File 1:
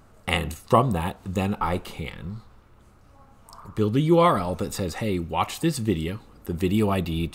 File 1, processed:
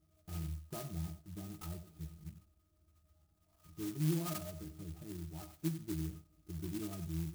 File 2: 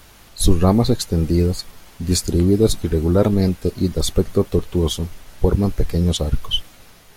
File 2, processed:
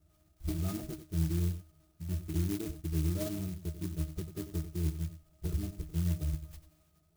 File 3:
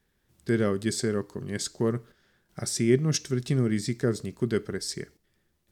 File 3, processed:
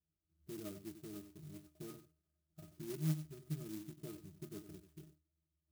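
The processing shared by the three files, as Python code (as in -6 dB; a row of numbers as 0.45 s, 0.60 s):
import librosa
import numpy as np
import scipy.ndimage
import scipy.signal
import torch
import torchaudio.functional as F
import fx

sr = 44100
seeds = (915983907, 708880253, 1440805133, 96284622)

p1 = np.clip(10.0 ** (9.5 / 20.0) * x, -1.0, 1.0) / 10.0 ** (9.5 / 20.0)
p2 = fx.octave_resonator(p1, sr, note='D#', decay_s=0.2)
p3 = p2 + fx.echo_single(p2, sr, ms=92, db=-11.5, dry=0)
p4 = fx.clock_jitter(p3, sr, seeds[0], jitter_ms=0.14)
y = F.gain(torch.from_numpy(p4), -7.0).numpy()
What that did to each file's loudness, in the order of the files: -17.5 LU, -17.0 LU, -18.5 LU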